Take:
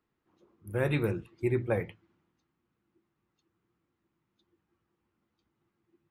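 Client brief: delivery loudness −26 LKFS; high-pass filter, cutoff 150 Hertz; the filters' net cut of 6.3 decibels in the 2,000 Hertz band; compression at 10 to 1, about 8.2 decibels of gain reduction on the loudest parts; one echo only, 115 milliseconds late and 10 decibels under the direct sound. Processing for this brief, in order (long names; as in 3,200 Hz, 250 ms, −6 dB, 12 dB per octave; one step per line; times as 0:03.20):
high-pass filter 150 Hz
parametric band 2,000 Hz −8 dB
downward compressor 10 to 1, threshold −33 dBFS
single-tap delay 115 ms −10 dB
level +14 dB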